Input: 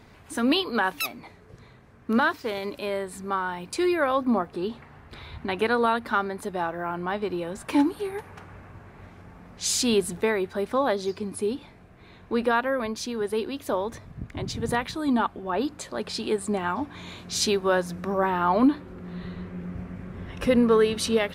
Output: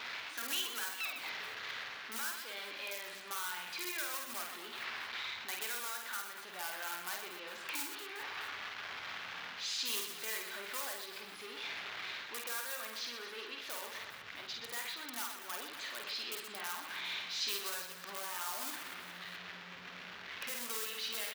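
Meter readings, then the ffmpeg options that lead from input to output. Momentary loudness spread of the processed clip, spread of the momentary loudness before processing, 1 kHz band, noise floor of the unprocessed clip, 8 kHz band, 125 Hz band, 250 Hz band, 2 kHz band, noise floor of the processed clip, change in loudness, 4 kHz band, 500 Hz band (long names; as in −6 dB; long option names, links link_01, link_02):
8 LU, 15 LU, −16.5 dB, −51 dBFS, −7.5 dB, −28.5 dB, −30.0 dB, −8.5 dB, −49 dBFS, −13.5 dB, −5.5 dB, −24.5 dB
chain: -filter_complex "[0:a]aeval=exprs='val(0)+0.5*0.0447*sgn(val(0))':channel_layout=same,areverse,acompressor=mode=upward:threshold=-25dB:ratio=2.5,areverse,firequalizer=gain_entry='entry(170,0);entry(1500,7);entry(3600,1);entry(8500,-28)':delay=0.05:min_phase=1,asplit=2[link_01][link_02];[link_02]aeval=exprs='(mod(5.31*val(0)+1,2)-1)/5.31':channel_layout=same,volume=-8dB[link_03];[link_01][link_03]amix=inputs=2:normalize=0,alimiter=limit=-12.5dB:level=0:latency=1:release=420,aderivative,aecho=1:1:50|125|237.5|406.2|659.4:0.631|0.398|0.251|0.158|0.1,volume=-7.5dB"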